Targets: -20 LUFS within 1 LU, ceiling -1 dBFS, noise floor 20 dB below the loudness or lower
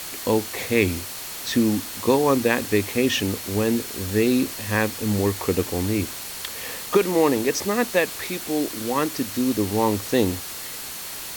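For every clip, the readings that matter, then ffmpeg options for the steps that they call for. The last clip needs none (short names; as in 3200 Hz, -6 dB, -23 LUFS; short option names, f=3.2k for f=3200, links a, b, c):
steady tone 4300 Hz; tone level -46 dBFS; noise floor -34 dBFS; noise floor target -43 dBFS; loudness -23.0 LUFS; peak -4.5 dBFS; loudness target -20.0 LUFS
-> -af "bandreject=f=4.3k:w=30"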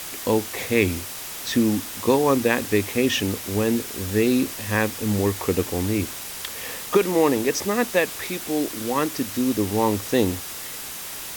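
steady tone none; noise floor -35 dBFS; noise floor target -43 dBFS
-> -af "afftdn=nr=8:nf=-35"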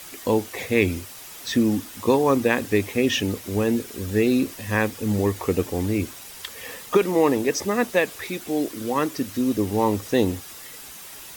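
noise floor -41 dBFS; noise floor target -43 dBFS
-> -af "afftdn=nr=6:nf=-41"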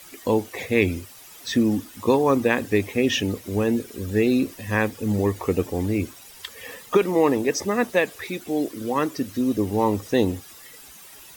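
noise floor -46 dBFS; loudness -23.5 LUFS; peak -5.5 dBFS; loudness target -20.0 LUFS
-> -af "volume=3.5dB"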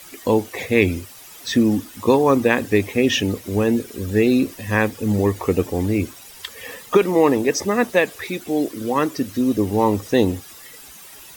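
loudness -20.0 LUFS; peak -2.0 dBFS; noise floor -42 dBFS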